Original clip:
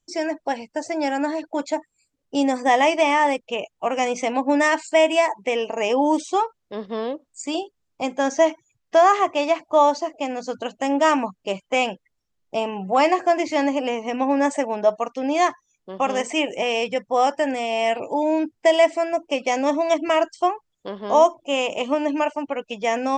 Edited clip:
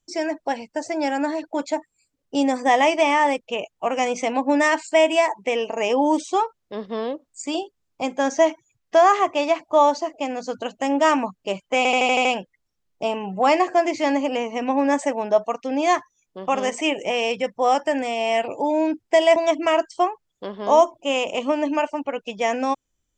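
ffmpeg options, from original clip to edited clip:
-filter_complex "[0:a]asplit=8[a][b][c][d][e][f][g][h];[a]atrim=end=11.852[i];[b]atrim=start=11.768:end=11.852[j];[c]atrim=start=11.768:end=11.852[k];[d]atrim=start=11.768:end=11.852[l];[e]atrim=start=11.768:end=11.852[m];[f]atrim=start=11.768:end=11.852[n];[g]atrim=start=11.768:end=18.882[o];[h]atrim=start=19.788[p];[i][j]acrossfade=d=0.004:c1=hsin:c2=hsin[q];[q][k]acrossfade=d=0.004:c1=hsin:c2=hsin[r];[r][l]acrossfade=d=0.004:c1=hsin:c2=hsin[s];[s][m]acrossfade=d=0.004:c1=hsin:c2=hsin[t];[t][n]acrossfade=d=0.004:c1=hsin:c2=hsin[u];[u][o]acrossfade=d=0.004:c1=hsin:c2=hsin[v];[v][p]acrossfade=d=0.004:c1=hsin:c2=hsin"

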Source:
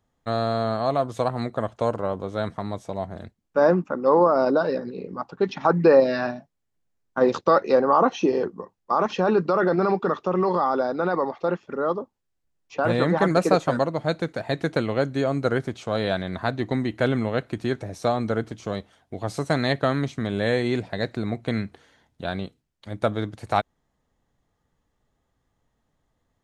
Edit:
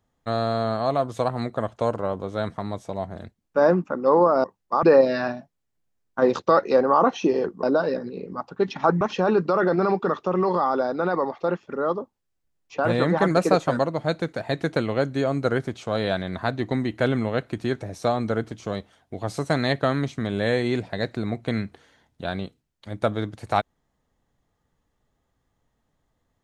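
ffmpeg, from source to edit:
-filter_complex "[0:a]asplit=5[a][b][c][d][e];[a]atrim=end=4.442[f];[b]atrim=start=8.618:end=9.012[g];[c]atrim=start=5.818:end=8.622[h];[d]atrim=start=4.438:end=5.822[i];[e]atrim=start=9.008[j];[f][g]acrossfade=d=0.004:c1=hsin:c2=hsin[k];[k][h]acrossfade=d=0.004:c1=hsin:c2=hsin[l];[l][i]acrossfade=d=0.004:c1=hsin:c2=hsin[m];[m][j]acrossfade=d=0.004:c1=hsin:c2=hsin"

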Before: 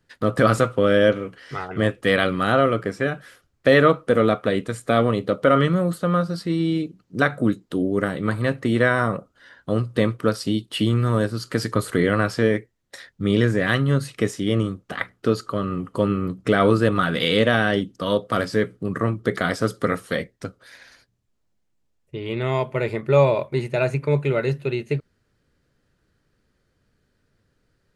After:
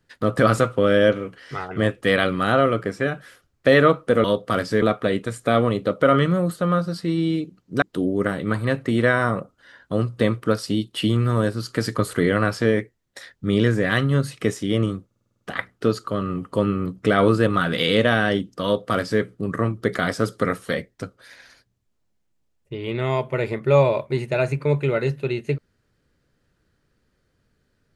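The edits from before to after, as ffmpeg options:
-filter_complex "[0:a]asplit=11[a][b][c][d][e][f][g][h][i][j][k];[a]atrim=end=4.242[l];[b]atrim=start=18.058:end=18.642[m];[c]atrim=start=4.238:end=7.242[n];[d]atrim=start=7.588:end=14.882[o];[e]atrim=start=14.828:end=14.882[p];[f]atrim=start=14.828:end=14.882[q];[g]atrim=start=14.828:end=14.882[r];[h]atrim=start=14.828:end=14.882[s];[i]atrim=start=14.828:end=14.882[t];[j]atrim=start=14.828:end=14.882[u];[k]atrim=start=14.828[v];[l][m]acrossfade=d=0.004:c1=hsin:c2=hsin[w];[w][n]acrossfade=d=0.004:c1=hsin:c2=hsin[x];[x][o]acrossfade=d=0.004:c1=hsin:c2=hsin[y];[y][p]acrossfade=d=0.004:c1=hsin:c2=hsin[z];[z][q]acrossfade=d=0.004:c1=hsin:c2=hsin[aa];[aa][r]acrossfade=d=0.004:c1=hsin:c2=hsin[ab];[ab][s]acrossfade=d=0.004:c1=hsin:c2=hsin[ac];[ac][t]acrossfade=d=0.004:c1=hsin:c2=hsin[ad];[ad][u]acrossfade=d=0.004:c1=hsin:c2=hsin[ae];[ae][v]acrossfade=d=0.004:c1=hsin:c2=hsin"

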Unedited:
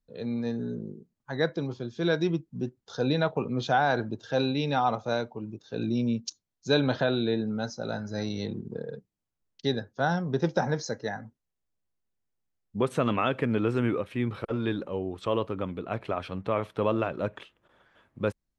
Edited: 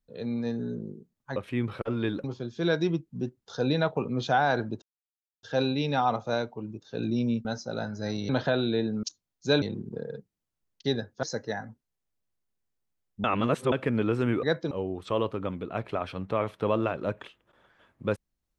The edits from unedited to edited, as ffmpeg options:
-filter_complex "[0:a]asplit=13[a][b][c][d][e][f][g][h][i][j][k][l][m];[a]atrim=end=1.362[n];[b]atrim=start=13.988:end=14.872[o];[c]atrim=start=1.638:end=4.22,asetpts=PTS-STARTPTS,afade=t=out:st=2.578:d=0.004:c=hsin,apad=pad_dur=0.61[p];[d]atrim=start=4.22:end=6.242,asetpts=PTS-STARTPTS,afade=t=in:d=0.004:c=hsin[q];[e]atrim=start=7.568:end=8.412[r];[f]atrim=start=6.828:end=7.572[s];[g]atrim=start=6.238:end=6.832[t];[h]atrim=start=8.408:end=10.022[u];[i]atrim=start=10.788:end=12.802[v];[j]atrim=start=12.798:end=13.282,asetpts=PTS-STARTPTS,areverse[w];[k]atrim=start=13.278:end=13.992[x];[l]atrim=start=1.358:end=1.642[y];[m]atrim=start=14.868[z];[n][o]acrossfade=d=0.004:c1=hsin:c2=hsin[aa];[p][q]concat=n=2:v=0:a=1[ab];[aa][ab]acrossfade=d=0.004:c1=hsin:c2=hsin[ac];[ac][r]acrossfade=d=0.004:c1=hsin:c2=hsin[ad];[ad][s]acrossfade=d=0.004:c1=hsin:c2=hsin[ae];[ae][t]acrossfade=d=0.004:c1=hsin:c2=hsin[af];[af][u]acrossfade=d=0.004:c1=hsin:c2=hsin[ag];[ag][v]acrossfade=d=0.004:c1=hsin:c2=hsin[ah];[ah][w]acrossfade=d=0.004:c1=hsin:c2=hsin[ai];[ai][x]acrossfade=d=0.004:c1=hsin:c2=hsin[aj];[aj][y]acrossfade=d=0.004:c1=hsin:c2=hsin[ak];[ak][z]acrossfade=d=0.004:c1=hsin:c2=hsin"

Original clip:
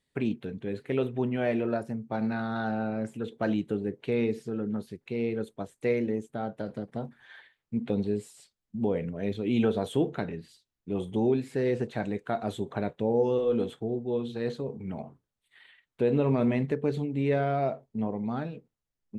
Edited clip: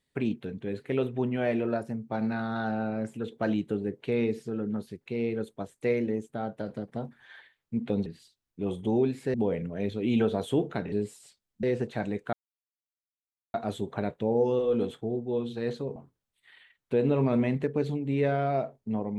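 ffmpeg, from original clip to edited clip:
-filter_complex "[0:a]asplit=7[a][b][c][d][e][f][g];[a]atrim=end=8.062[h];[b]atrim=start=10.348:end=11.632[i];[c]atrim=start=8.768:end=10.352[j];[d]atrim=start=8.058:end=8.772[k];[e]atrim=start=11.628:end=12.33,asetpts=PTS-STARTPTS,afade=t=out:st=0.698:d=0.004:c=hsin,apad=pad_dur=1.21[l];[f]atrim=start=12.33:end=14.752,asetpts=PTS-STARTPTS,afade=t=in:d=0.004:c=hsin[m];[g]atrim=start=15.038[n];[h][i]acrossfade=d=0.004:c1=hsin:c2=hsin[o];[o][j]acrossfade=d=0.004:c1=hsin:c2=hsin[p];[p][k]acrossfade=d=0.004:c1=hsin:c2=hsin[q];[l][m]concat=n=2:v=0:a=1[r];[q][r]acrossfade=d=0.004:c1=hsin:c2=hsin[s];[s][n]acrossfade=d=0.004:c1=hsin:c2=hsin"

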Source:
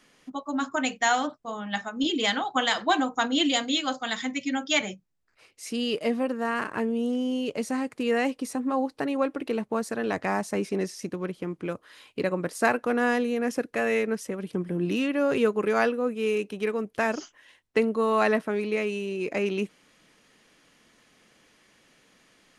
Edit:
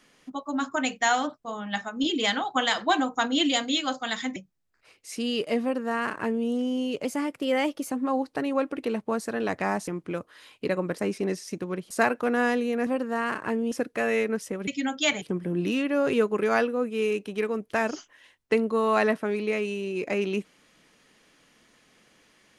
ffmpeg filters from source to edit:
-filter_complex "[0:a]asplit=11[a][b][c][d][e][f][g][h][i][j][k];[a]atrim=end=4.362[l];[b]atrim=start=4.898:end=7.594[m];[c]atrim=start=7.59:end=8.55,asetpts=PTS-STARTPTS,asetrate=48951,aresample=44100[n];[d]atrim=start=8.546:end=10.512[o];[e]atrim=start=11.418:end=12.542[p];[f]atrim=start=10.508:end=11.422[q];[g]atrim=start=12.538:end=13.502[r];[h]atrim=start=6.158:end=7.012[s];[i]atrim=start=13.498:end=14.462[t];[j]atrim=start=4.358:end=4.902[u];[k]atrim=start=14.458[v];[l][m]acrossfade=d=0.004:c1=hsin:c2=hsin[w];[w][n]acrossfade=d=0.004:c1=hsin:c2=hsin[x];[x][o]acrossfade=d=0.004:c1=hsin:c2=hsin[y];[y][p]acrossfade=d=0.004:c1=hsin:c2=hsin[z];[z][q]acrossfade=d=0.004:c1=hsin:c2=hsin[aa];[aa][r]acrossfade=d=0.004:c1=hsin:c2=hsin[ab];[ab][s]acrossfade=d=0.004:c1=hsin:c2=hsin[ac];[ac][t]acrossfade=d=0.004:c1=hsin:c2=hsin[ad];[ad][u]acrossfade=d=0.004:c1=hsin:c2=hsin[ae];[ae][v]acrossfade=d=0.004:c1=hsin:c2=hsin"

